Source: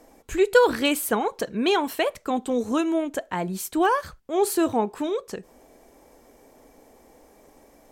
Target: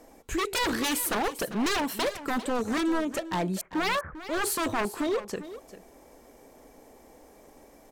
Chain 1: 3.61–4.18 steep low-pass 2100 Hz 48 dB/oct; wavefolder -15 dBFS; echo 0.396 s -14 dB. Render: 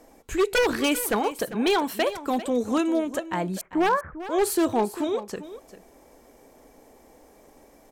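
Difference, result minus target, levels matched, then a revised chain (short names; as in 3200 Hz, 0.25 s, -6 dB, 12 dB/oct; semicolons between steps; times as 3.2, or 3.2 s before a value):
wavefolder: distortion -12 dB
3.61–4.18 steep low-pass 2100 Hz 48 dB/oct; wavefolder -22 dBFS; echo 0.396 s -14 dB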